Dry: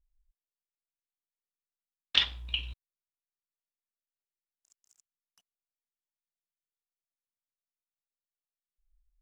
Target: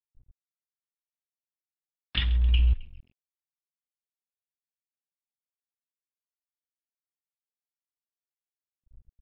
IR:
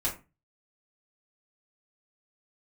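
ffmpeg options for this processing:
-filter_complex "[0:a]acrossover=split=290|1500[link_01][link_02][link_03];[link_02]acompressor=threshold=-57dB:ratio=6[link_04];[link_01][link_04][link_03]amix=inputs=3:normalize=0,asplit=5[link_05][link_06][link_07][link_08][link_09];[link_06]adelay=133,afreqshift=-42,volume=-20dB[link_10];[link_07]adelay=266,afreqshift=-84,volume=-25.2dB[link_11];[link_08]adelay=399,afreqshift=-126,volume=-30.4dB[link_12];[link_09]adelay=532,afreqshift=-168,volume=-35.6dB[link_13];[link_05][link_10][link_11][link_12][link_13]amix=inputs=5:normalize=0,acontrast=38,lowpass=2800,aemphasis=mode=reproduction:type=riaa,aeval=exprs='sgn(val(0))*max(abs(val(0))-0.00501,0)':channel_layout=same" -ar 12000 -c:a libmp3lame -b:a 64k

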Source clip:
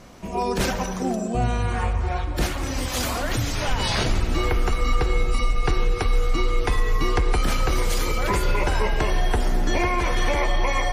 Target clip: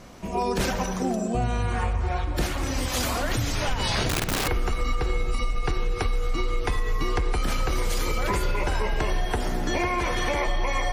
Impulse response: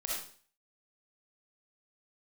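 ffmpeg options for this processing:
-filter_complex "[0:a]asettb=1/sr,asplit=3[link_01][link_02][link_03];[link_01]atrim=end=9.254[link_04];[link_02]atrim=start=9.25:end=10.47,asetpts=PTS-STARTPTS,afade=type=in:duration=0.004:curve=qsin,afade=type=out:start_time=1.216:duration=0.004:curve=qsin,highpass=frequency=54:poles=1[link_05];[link_03]atrim=start=10.466[link_06];[link_04][link_05]acrossfade=duration=0.004:curve1=hsin:curve2=qsin[link_07];[link_07][link_06]acrossfade=duration=0.004:curve1=qsin:curve2=hsin,acompressor=threshold=-20dB:ratio=10,asettb=1/sr,asplit=3[link_08][link_09][link_10];[link_08]atrim=end=4.094[link_11];[link_09]atrim=start=4.09:end=4.49,asetpts=PTS-STARTPTS,afade=type=in:duration=0.004:curve=qsin,afade=type=out:start_time=0.396:duration=0.004:curve=qsin,aeval=exprs='(mod(10.6*val(0)+1,2)-1)/10.6':channel_layout=same[link_12];[link_10]atrim=start=4.486[link_13];[link_11][link_12]acrossfade=duration=0.004:curve1=hsin:curve2=qsin[link_14];[link_14][link_13]acrossfade=duration=0.004:curve1=qsin:curve2=hsin"

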